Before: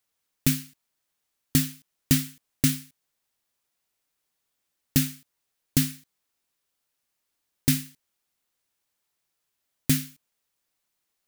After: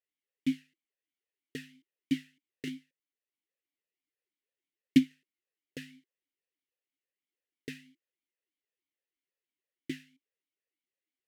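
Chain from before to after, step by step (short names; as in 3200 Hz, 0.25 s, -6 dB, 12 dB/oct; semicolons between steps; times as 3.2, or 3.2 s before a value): 2.67–5.11 transient shaper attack +10 dB, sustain -3 dB; vowel sweep e-i 3.1 Hz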